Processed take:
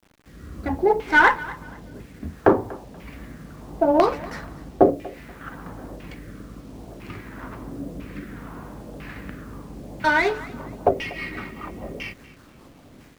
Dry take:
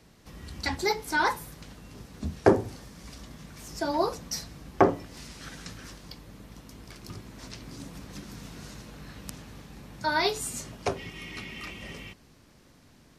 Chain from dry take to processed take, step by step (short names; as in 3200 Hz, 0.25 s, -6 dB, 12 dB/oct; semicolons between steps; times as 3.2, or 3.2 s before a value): low-pass opened by the level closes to 2000 Hz, open at -27 dBFS; rotary speaker horn 0.65 Hz, later 5 Hz, at 9.71; LFO low-pass saw down 1 Hz 580–2800 Hz; AGC gain up to 9 dB; bit-crush 9-bit; bell 290 Hz +3.5 dB 0.4 oct; on a send: thinning echo 0.24 s, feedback 28%, level -18.5 dB; on the sum: dynamic EQ 130 Hz, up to -4 dB, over -39 dBFS, Q 0.79; running maximum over 3 samples